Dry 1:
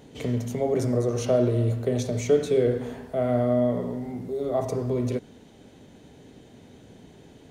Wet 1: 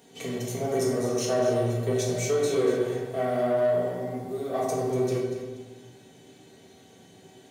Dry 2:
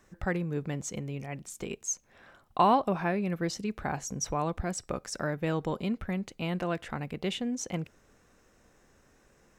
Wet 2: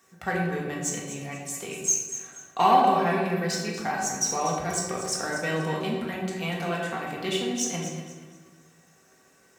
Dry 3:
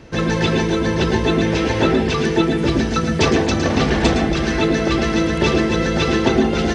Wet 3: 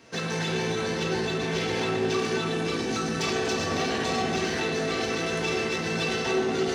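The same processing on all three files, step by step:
high-shelf EQ 5,000 Hz +8.5 dB
in parallel at −7 dB: dead-zone distortion −32.5 dBFS
on the sum: rectangular room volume 560 cubic metres, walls mixed, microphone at 1.7 metres
brickwall limiter −6 dBFS
soft clipping −9.5 dBFS
high-pass filter 78 Hz 24 dB per octave
low-shelf EQ 400 Hz −7 dB
tuned comb filter 380 Hz, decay 0.22 s, harmonics all, mix 80%
on a send: delay that swaps between a low-pass and a high-pass 120 ms, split 870 Hz, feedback 55%, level −6 dB
on the sum: loudness normalisation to −27 LKFS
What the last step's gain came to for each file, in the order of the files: +6.0, +10.5, +2.5 decibels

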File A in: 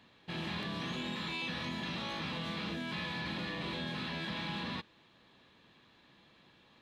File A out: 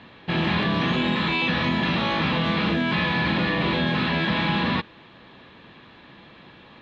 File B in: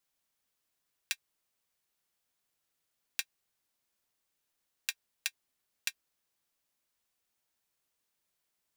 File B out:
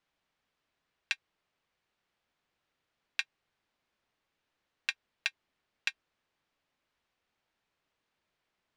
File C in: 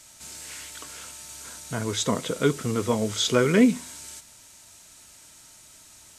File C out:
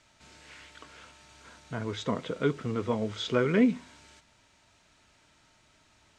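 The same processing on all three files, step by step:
low-pass filter 3,100 Hz 12 dB per octave
normalise the peak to −12 dBFS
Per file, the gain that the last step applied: +16.5, +6.5, −5.0 decibels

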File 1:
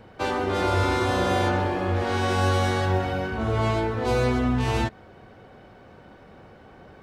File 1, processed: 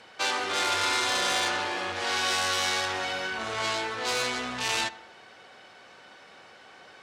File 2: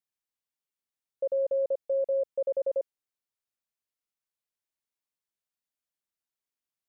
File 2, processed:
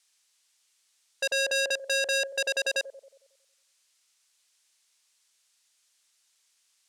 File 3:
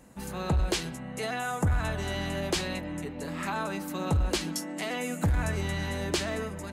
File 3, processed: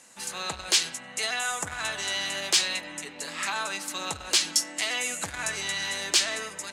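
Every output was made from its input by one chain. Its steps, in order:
meter weighting curve ITU-R 468
feedback echo with a low-pass in the loop 91 ms, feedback 52%, low-pass 2,500 Hz, level −20 dB
saturating transformer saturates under 4,000 Hz
loudness normalisation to −27 LKFS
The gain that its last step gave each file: 0.0, +14.5, +1.0 decibels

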